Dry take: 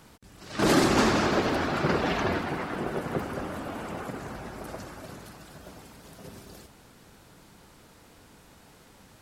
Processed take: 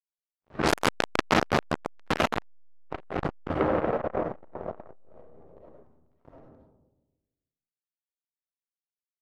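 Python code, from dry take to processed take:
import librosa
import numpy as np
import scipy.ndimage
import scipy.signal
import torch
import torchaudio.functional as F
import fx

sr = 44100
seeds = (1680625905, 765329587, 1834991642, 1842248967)

y = fx.octave_divider(x, sr, octaves=1, level_db=0.0)
y = fx.doubler(y, sr, ms=13.0, db=-4.5)
y = y + 10.0 ** (-14.5 / 20.0) * np.pad(y, (int(271 * sr / 1000.0), 0))[:len(y)]
y = np.sign(y) * np.maximum(np.abs(y) - 10.0 ** (-35.5 / 20.0), 0.0)
y = fx.high_shelf(y, sr, hz=4200.0, db=3.0)
y = fx.hum_notches(y, sr, base_hz=50, count=6)
y = fx.rev_freeverb(y, sr, rt60_s=1.1, hf_ratio=0.25, predelay_ms=25, drr_db=-5.0)
y = fx.env_lowpass(y, sr, base_hz=870.0, full_db=-15.0)
y = fx.peak_eq(y, sr, hz=510.0, db=12.0, octaves=0.97, at=(3.59, 5.83))
y = fx.transformer_sat(y, sr, knee_hz=2600.0)
y = F.gain(torch.from_numpy(y), 3.5).numpy()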